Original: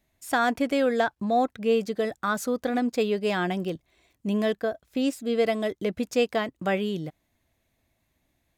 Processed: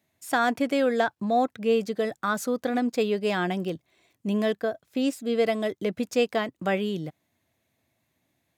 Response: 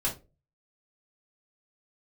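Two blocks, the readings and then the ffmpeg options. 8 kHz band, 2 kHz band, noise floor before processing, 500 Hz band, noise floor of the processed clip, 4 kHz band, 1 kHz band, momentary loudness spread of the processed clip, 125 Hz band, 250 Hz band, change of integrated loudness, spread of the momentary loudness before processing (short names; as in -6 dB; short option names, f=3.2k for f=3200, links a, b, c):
0.0 dB, 0.0 dB, -75 dBFS, 0.0 dB, -76 dBFS, 0.0 dB, 0.0 dB, 6 LU, 0.0 dB, 0.0 dB, 0.0 dB, 6 LU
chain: -af "highpass=f=93:w=0.5412,highpass=f=93:w=1.3066"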